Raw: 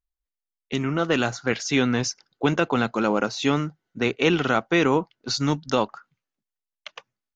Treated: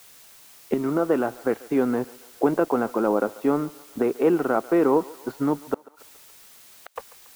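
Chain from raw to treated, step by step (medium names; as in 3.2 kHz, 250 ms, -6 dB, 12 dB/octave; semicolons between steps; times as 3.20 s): recorder AGC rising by 17 dB/s; Butterworth band-pass 630 Hz, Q 0.63; crossover distortion -52.5 dBFS; added noise blue -41 dBFS; tilt EQ -2.5 dB/octave; 5.74–6.96 s: inverted gate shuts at -25 dBFS, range -40 dB; thinning echo 141 ms, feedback 64%, high-pass 470 Hz, level -19 dB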